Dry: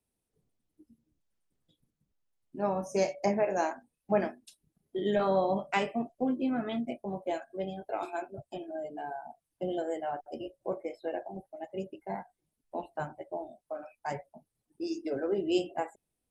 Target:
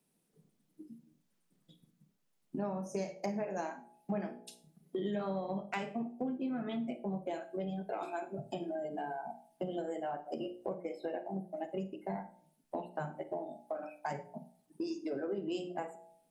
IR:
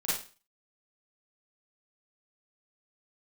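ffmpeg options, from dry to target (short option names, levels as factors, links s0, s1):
-filter_complex "[0:a]lowshelf=f=120:t=q:w=3:g=-11,bandreject=f=59.75:t=h:w=4,bandreject=f=119.5:t=h:w=4,bandreject=f=179.25:t=h:w=4,bandreject=f=239:t=h:w=4,bandreject=f=298.75:t=h:w=4,bandreject=f=358.5:t=h:w=4,bandreject=f=418.25:t=h:w=4,bandreject=f=478:t=h:w=4,bandreject=f=537.75:t=h:w=4,bandreject=f=597.5:t=h:w=4,bandreject=f=657.25:t=h:w=4,bandreject=f=717:t=h:w=4,bandreject=f=776.75:t=h:w=4,bandreject=f=836.5:t=h:w=4,bandreject=f=896.25:t=h:w=4,acompressor=threshold=0.00708:ratio=5,aeval=exprs='0.0299*(cos(1*acos(clip(val(0)/0.0299,-1,1)))-cos(1*PI/2))+0.000211*(cos(7*acos(clip(val(0)/0.0299,-1,1)))-cos(7*PI/2))':c=same,asplit=2[s0][s1];[1:a]atrim=start_sample=2205[s2];[s1][s2]afir=irnorm=-1:irlink=0,volume=0.133[s3];[s0][s3]amix=inputs=2:normalize=0,volume=2"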